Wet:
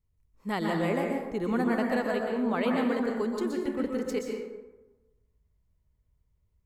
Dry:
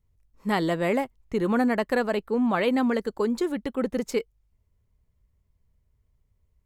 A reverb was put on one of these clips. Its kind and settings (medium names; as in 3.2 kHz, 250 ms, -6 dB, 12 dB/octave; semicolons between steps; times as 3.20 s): plate-style reverb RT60 1.1 s, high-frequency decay 0.5×, pre-delay 110 ms, DRR 0.5 dB; trim -6.5 dB